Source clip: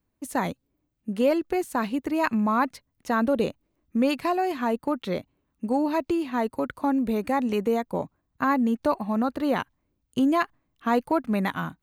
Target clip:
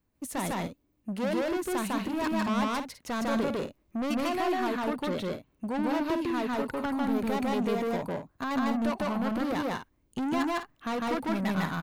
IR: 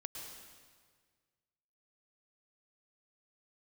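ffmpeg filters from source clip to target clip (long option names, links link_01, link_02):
-filter_complex "[0:a]asettb=1/sr,asplit=3[link_01][link_02][link_03];[link_01]atrim=end=7.994[link_04];[link_02]atrim=start=7.99:end=8.51,asetpts=PTS-STARTPTS,afade=type=in:duration=0.004:curve=qsin,afade=type=out:start_time=0.516:duration=0.004:curve=qsin,acompressor=threshold=-25dB:ratio=6[link_05];[link_03]atrim=start=8.506[link_06];[link_04][link_05]acrossfade=duration=0.004:curve1=hsin:curve2=qsin[link_07];[link_07][link_06]acrossfade=duration=0.004:curve1=qsin:curve2=hsin,asoftclip=type=tanh:threshold=-28.5dB,aecho=1:1:151.6|204.1:1|0.355"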